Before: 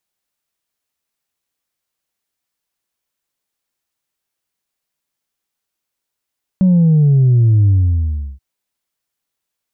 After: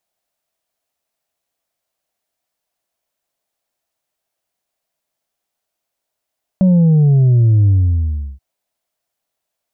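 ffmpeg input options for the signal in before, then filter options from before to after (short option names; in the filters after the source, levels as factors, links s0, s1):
-f lavfi -i "aevalsrc='0.398*clip((1.78-t)/0.71,0,1)*tanh(1.12*sin(2*PI*190*1.78/log(65/190)*(exp(log(65/190)*t/1.78)-1)))/tanh(1.12)':d=1.78:s=44100"
-af "equalizer=f=660:t=o:w=0.56:g=12"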